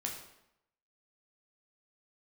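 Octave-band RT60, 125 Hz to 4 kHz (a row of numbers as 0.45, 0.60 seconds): 0.80, 0.80, 0.80, 0.80, 0.75, 0.65 seconds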